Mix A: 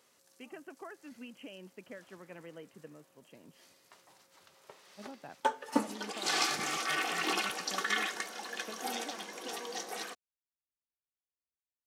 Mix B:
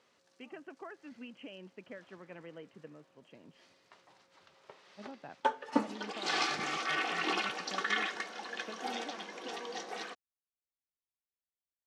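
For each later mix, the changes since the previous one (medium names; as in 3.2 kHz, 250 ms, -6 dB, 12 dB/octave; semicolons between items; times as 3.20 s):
background: add low-pass 4.4 kHz 12 dB/octave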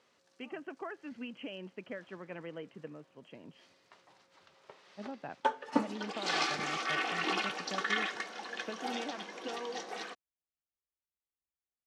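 speech +5.0 dB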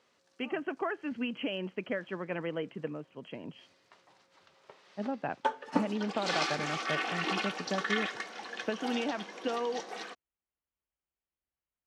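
speech +8.5 dB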